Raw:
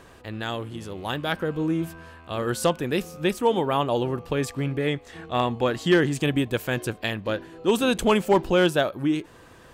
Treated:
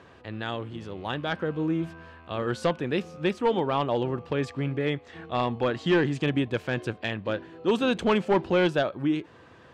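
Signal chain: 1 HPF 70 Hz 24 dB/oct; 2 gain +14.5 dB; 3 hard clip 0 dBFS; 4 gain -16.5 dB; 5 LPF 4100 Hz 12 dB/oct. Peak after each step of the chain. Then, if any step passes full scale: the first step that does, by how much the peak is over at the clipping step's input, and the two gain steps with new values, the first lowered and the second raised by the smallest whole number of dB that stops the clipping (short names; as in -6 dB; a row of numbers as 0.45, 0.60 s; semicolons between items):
-8.0, +6.5, 0.0, -16.5, -16.0 dBFS; step 2, 6.5 dB; step 2 +7.5 dB, step 4 -9.5 dB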